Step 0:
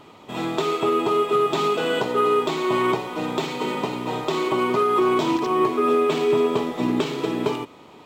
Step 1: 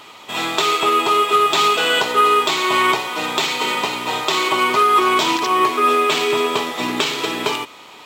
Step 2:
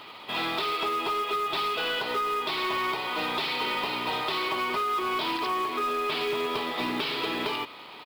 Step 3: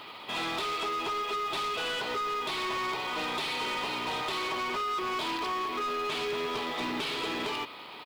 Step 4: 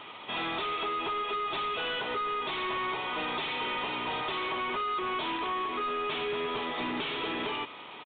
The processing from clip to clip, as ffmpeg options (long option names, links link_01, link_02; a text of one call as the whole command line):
ffmpeg -i in.wav -af "tiltshelf=frequency=720:gain=-10,volume=4dB" out.wav
ffmpeg -i in.wav -af "acompressor=threshold=-19dB:ratio=12,aresample=11025,asoftclip=type=tanh:threshold=-19dB,aresample=44100,acrusher=bits=5:mode=log:mix=0:aa=0.000001,volume=-3.5dB" out.wav
ffmpeg -i in.wav -af "asoftclip=type=tanh:threshold=-28.5dB" out.wav
ffmpeg -i in.wav -af "aresample=8000,aresample=44100" out.wav